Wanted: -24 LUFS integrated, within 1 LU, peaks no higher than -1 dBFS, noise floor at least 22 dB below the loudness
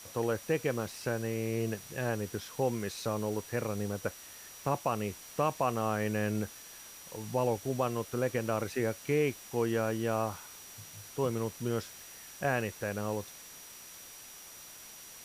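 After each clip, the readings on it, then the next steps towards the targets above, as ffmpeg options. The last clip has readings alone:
steady tone 5.8 kHz; tone level -53 dBFS; noise floor -50 dBFS; noise floor target -56 dBFS; loudness -33.5 LUFS; peak level -17.0 dBFS; loudness target -24.0 LUFS
-> -af "bandreject=f=5800:w=30"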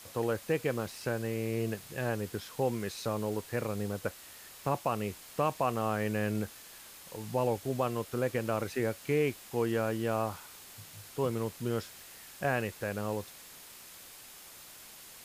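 steady tone not found; noise floor -51 dBFS; noise floor target -56 dBFS
-> -af "afftdn=nr=6:nf=-51"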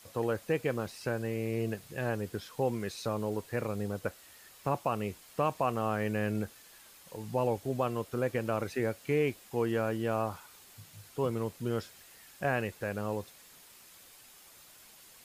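noise floor -56 dBFS; loudness -33.5 LUFS; peak level -17.0 dBFS; loudness target -24.0 LUFS
-> -af "volume=2.99"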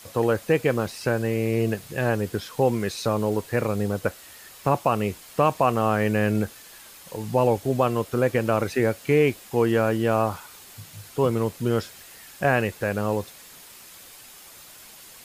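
loudness -24.0 LUFS; peak level -7.5 dBFS; noise floor -47 dBFS

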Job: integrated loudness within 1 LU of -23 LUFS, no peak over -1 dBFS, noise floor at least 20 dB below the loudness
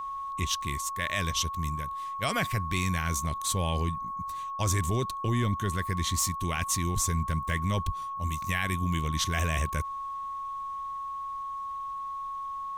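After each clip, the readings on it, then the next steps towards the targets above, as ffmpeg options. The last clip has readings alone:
steady tone 1.1 kHz; tone level -33 dBFS; loudness -30.5 LUFS; peak level -15.0 dBFS; loudness target -23.0 LUFS
-> -af "bandreject=f=1100:w=30"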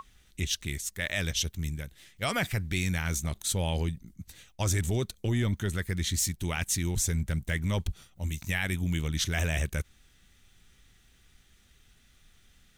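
steady tone not found; loudness -30.5 LUFS; peak level -15.0 dBFS; loudness target -23.0 LUFS
-> -af "volume=2.37"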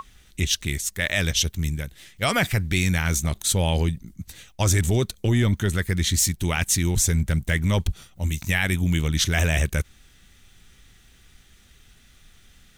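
loudness -23.0 LUFS; peak level -7.5 dBFS; noise floor -55 dBFS

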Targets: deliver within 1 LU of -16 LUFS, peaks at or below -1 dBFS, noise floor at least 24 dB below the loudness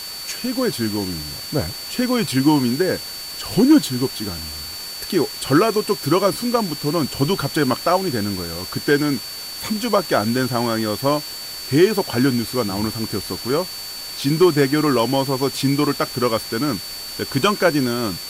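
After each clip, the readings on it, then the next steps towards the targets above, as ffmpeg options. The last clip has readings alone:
steady tone 4.5 kHz; tone level -31 dBFS; noise floor -32 dBFS; noise floor target -45 dBFS; loudness -20.5 LUFS; peak level -4.5 dBFS; loudness target -16.0 LUFS
-> -af "bandreject=f=4500:w=30"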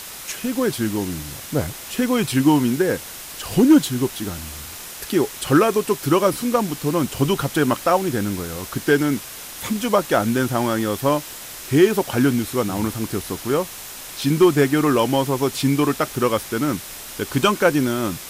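steady tone not found; noise floor -36 dBFS; noise floor target -45 dBFS
-> -af "afftdn=nr=9:nf=-36"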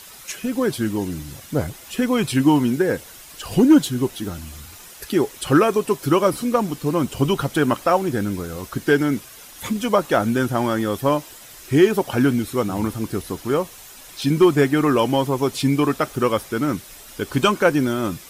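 noise floor -42 dBFS; noise floor target -45 dBFS
-> -af "afftdn=nr=6:nf=-42"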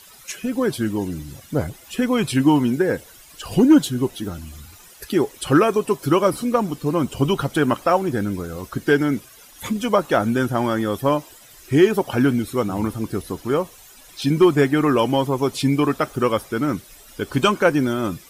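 noise floor -46 dBFS; loudness -20.5 LUFS; peak level -4.5 dBFS; loudness target -16.0 LUFS
-> -af "volume=1.68,alimiter=limit=0.891:level=0:latency=1"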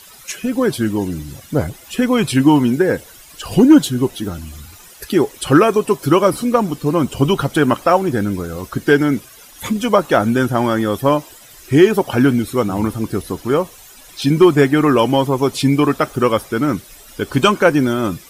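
loudness -16.0 LUFS; peak level -1.0 dBFS; noise floor -42 dBFS

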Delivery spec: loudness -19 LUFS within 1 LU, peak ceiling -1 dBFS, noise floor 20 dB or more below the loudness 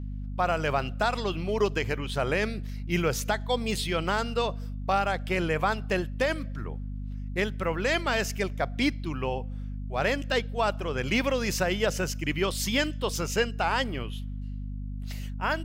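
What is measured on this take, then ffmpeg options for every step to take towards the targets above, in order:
hum 50 Hz; highest harmonic 250 Hz; hum level -32 dBFS; loudness -29.0 LUFS; peak level -13.5 dBFS; loudness target -19.0 LUFS
-> -af "bandreject=f=50:t=h:w=6,bandreject=f=100:t=h:w=6,bandreject=f=150:t=h:w=6,bandreject=f=200:t=h:w=6,bandreject=f=250:t=h:w=6"
-af "volume=3.16"

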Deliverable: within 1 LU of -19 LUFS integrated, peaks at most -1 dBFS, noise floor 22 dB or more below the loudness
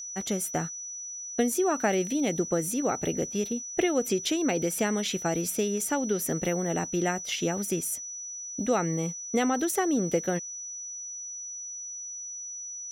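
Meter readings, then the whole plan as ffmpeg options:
steady tone 5.9 kHz; tone level -36 dBFS; loudness -29.0 LUFS; peak level -12.5 dBFS; loudness target -19.0 LUFS
-> -af "bandreject=f=5900:w=30"
-af "volume=3.16"

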